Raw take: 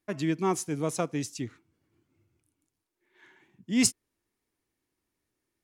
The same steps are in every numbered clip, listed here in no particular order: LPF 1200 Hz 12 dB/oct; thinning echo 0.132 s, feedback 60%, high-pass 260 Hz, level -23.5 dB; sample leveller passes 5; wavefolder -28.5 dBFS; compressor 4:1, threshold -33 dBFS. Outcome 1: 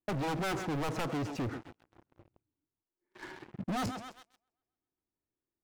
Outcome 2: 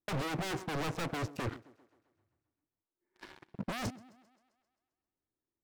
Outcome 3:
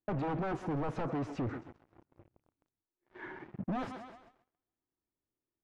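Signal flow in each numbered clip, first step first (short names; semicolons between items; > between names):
LPF > wavefolder > thinning echo > sample leveller > compressor; LPF > compressor > sample leveller > thinning echo > wavefolder; wavefolder > thinning echo > sample leveller > LPF > compressor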